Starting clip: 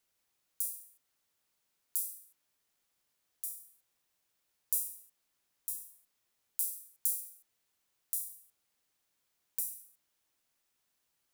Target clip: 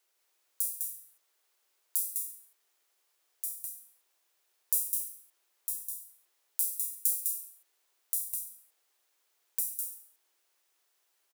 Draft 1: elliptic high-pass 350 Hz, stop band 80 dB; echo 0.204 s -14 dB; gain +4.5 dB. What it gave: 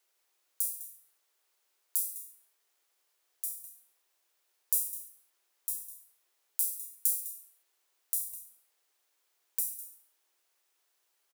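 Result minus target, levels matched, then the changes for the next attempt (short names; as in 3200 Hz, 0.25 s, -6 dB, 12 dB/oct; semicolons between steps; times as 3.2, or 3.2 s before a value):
echo-to-direct -10 dB
change: echo 0.204 s -4 dB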